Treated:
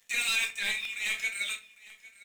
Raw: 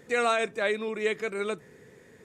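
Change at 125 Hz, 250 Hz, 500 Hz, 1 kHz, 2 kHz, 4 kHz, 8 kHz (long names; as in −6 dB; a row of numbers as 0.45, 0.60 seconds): below −15 dB, −19.5 dB, −27.5 dB, −15.0 dB, +2.0 dB, +7.0 dB, +9.0 dB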